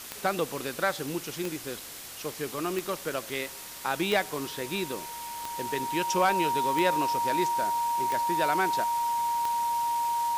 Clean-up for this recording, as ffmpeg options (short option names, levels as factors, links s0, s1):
-af "adeclick=t=4,bandreject=f=940:w=30,afwtdn=0.0089"